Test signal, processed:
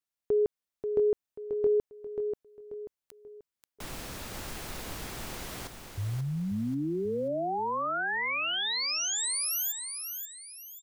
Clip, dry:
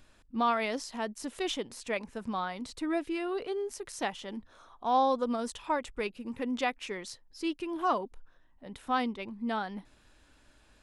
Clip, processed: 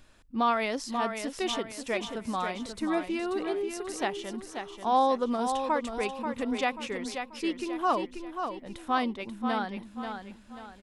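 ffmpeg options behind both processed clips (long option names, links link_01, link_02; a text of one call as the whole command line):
ffmpeg -i in.wav -af "aecho=1:1:536|1072|1608|2144:0.447|0.17|0.0645|0.0245,volume=2dB" out.wav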